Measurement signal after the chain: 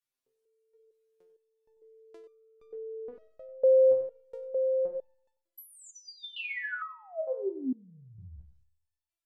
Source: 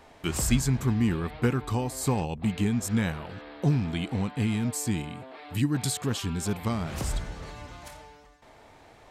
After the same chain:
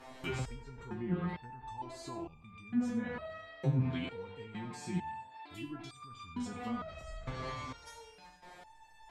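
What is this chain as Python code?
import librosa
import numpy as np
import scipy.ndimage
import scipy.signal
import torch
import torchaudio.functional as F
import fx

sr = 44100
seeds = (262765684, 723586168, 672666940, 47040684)

p1 = fx.hum_notches(x, sr, base_hz=50, count=2)
p2 = fx.rev_schroeder(p1, sr, rt60_s=0.79, comb_ms=32, drr_db=14.5)
p3 = fx.over_compress(p2, sr, threshold_db=-35.0, ratio=-1.0)
p4 = p2 + F.gain(torch.from_numpy(p3), -1.0).numpy()
p5 = fx.env_lowpass_down(p4, sr, base_hz=1200.0, full_db=-18.5)
p6 = p5 + fx.echo_single(p5, sr, ms=94, db=-13.5, dry=0)
p7 = fx.resonator_held(p6, sr, hz=2.2, low_hz=130.0, high_hz=1200.0)
y = F.gain(torch.from_numpy(p7), 3.0).numpy()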